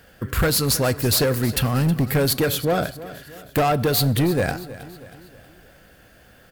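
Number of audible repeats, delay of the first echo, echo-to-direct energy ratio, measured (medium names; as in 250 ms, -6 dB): 3, 318 ms, -15.0 dB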